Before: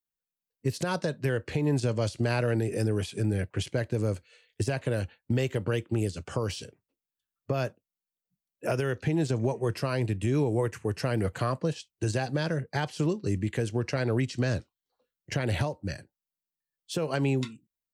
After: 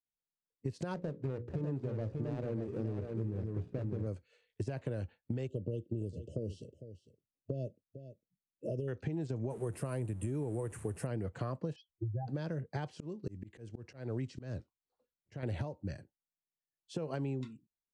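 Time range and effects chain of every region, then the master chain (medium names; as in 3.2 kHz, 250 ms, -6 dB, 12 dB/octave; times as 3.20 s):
0.94–4.07 s: median filter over 41 samples + hum notches 60/120/180/240/300/360/420/480/540 Hz + delay 594 ms -5 dB
5.47–8.88 s: brick-wall FIR band-stop 670–2600 Hz + peaking EQ 4.3 kHz -8.5 dB 2.5 oct + delay 453 ms -15.5 dB
9.50–11.07 s: jump at every zero crossing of -40 dBFS + resonant high shelf 7.2 kHz +13.5 dB, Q 3
11.76–12.28 s: spectral contrast enhancement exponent 3.3 + distance through air 110 m
12.95–15.43 s: block-companded coder 7-bit + slow attack 311 ms
whole clip: low-pass 9 kHz 24 dB/octave; tilt shelf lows +5.5 dB, about 1.1 kHz; compression, threshold -24 dBFS; trim -9 dB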